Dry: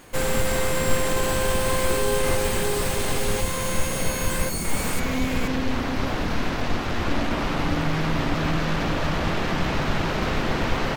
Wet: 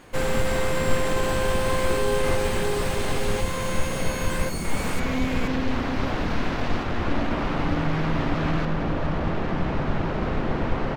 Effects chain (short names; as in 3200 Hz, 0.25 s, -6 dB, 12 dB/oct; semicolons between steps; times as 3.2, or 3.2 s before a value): LPF 3800 Hz 6 dB/oct, from 6.83 s 2200 Hz, from 8.65 s 1000 Hz